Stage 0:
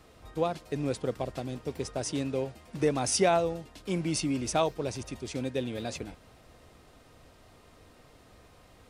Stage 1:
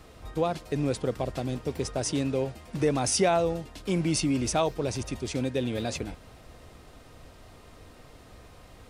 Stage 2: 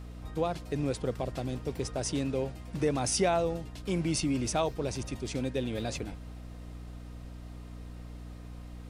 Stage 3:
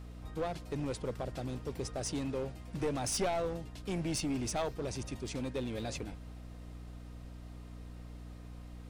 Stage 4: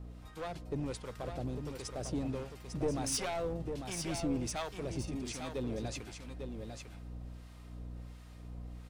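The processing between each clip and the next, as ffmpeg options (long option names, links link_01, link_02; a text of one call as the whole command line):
ffmpeg -i in.wav -filter_complex "[0:a]lowshelf=frequency=78:gain=5.5,asplit=2[link_01][link_02];[link_02]alimiter=limit=-24dB:level=0:latency=1:release=55,volume=2dB[link_03];[link_01][link_03]amix=inputs=2:normalize=0,volume=-2.5dB" out.wav
ffmpeg -i in.wav -af "aeval=exprs='val(0)+0.0112*(sin(2*PI*60*n/s)+sin(2*PI*2*60*n/s)/2+sin(2*PI*3*60*n/s)/3+sin(2*PI*4*60*n/s)/4+sin(2*PI*5*60*n/s)/5)':channel_layout=same,volume=-3.5dB" out.wav
ffmpeg -i in.wav -af "aeval=exprs='clip(val(0),-1,0.0398)':channel_layout=same,volume=-3.5dB" out.wav
ffmpeg -i in.wav -filter_complex "[0:a]acrossover=split=900[link_01][link_02];[link_01]aeval=exprs='val(0)*(1-0.7/2+0.7/2*cos(2*PI*1.4*n/s))':channel_layout=same[link_03];[link_02]aeval=exprs='val(0)*(1-0.7/2-0.7/2*cos(2*PI*1.4*n/s))':channel_layout=same[link_04];[link_03][link_04]amix=inputs=2:normalize=0,aecho=1:1:849:0.473,volume=1dB" out.wav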